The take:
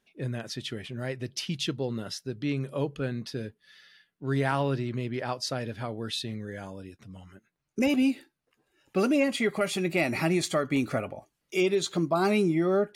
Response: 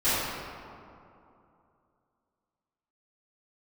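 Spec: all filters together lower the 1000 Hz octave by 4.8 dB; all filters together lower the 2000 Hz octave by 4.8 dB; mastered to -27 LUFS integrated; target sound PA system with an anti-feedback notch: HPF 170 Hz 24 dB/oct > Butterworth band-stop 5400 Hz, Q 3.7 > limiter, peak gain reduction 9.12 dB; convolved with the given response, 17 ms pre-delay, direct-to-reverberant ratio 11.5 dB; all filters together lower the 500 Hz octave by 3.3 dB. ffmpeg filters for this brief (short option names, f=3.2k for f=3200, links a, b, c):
-filter_complex "[0:a]equalizer=f=500:t=o:g=-3.5,equalizer=f=1k:t=o:g=-4,equalizer=f=2k:t=o:g=-5,asplit=2[a][b];[1:a]atrim=start_sample=2205,adelay=17[c];[b][c]afir=irnorm=-1:irlink=0,volume=-27dB[d];[a][d]amix=inputs=2:normalize=0,highpass=f=170:w=0.5412,highpass=f=170:w=1.3066,asuperstop=centerf=5400:order=8:qfactor=3.7,volume=9dB,alimiter=limit=-16.5dB:level=0:latency=1"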